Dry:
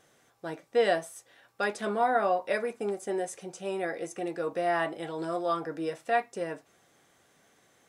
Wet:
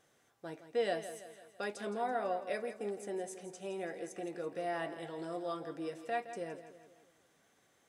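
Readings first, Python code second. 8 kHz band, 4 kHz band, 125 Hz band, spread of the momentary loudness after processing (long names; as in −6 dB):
−6.5 dB, −7.5 dB, −7.0 dB, 12 LU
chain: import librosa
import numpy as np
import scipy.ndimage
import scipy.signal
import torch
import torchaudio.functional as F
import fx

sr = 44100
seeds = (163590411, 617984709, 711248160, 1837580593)

p1 = fx.dynamic_eq(x, sr, hz=1200.0, q=0.99, threshold_db=-42.0, ratio=4.0, max_db=-6)
p2 = p1 + fx.echo_feedback(p1, sr, ms=166, feedback_pct=50, wet_db=-12, dry=0)
y = F.gain(torch.from_numpy(p2), -7.0).numpy()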